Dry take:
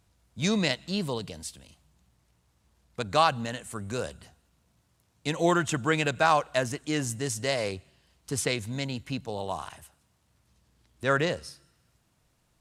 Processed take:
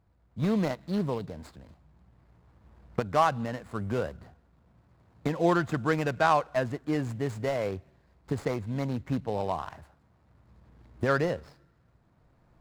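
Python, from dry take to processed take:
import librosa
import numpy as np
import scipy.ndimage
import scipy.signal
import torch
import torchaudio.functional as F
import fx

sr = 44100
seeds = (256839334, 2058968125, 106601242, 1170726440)

y = scipy.ndimage.median_filter(x, 15, mode='constant')
y = fx.recorder_agc(y, sr, target_db=-19.0, rise_db_per_s=7.1, max_gain_db=30)
y = fx.high_shelf(y, sr, hz=5800.0, db=-9.5)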